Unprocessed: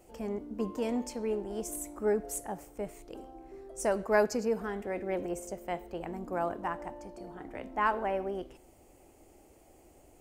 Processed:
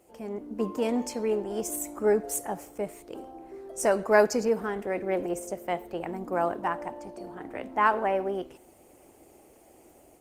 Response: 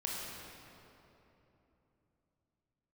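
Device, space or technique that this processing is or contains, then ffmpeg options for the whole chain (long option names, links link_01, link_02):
video call: -af "highpass=frequency=170:poles=1,dynaudnorm=framelen=290:gausssize=3:maxgain=6dB" -ar 48000 -c:a libopus -b:a 24k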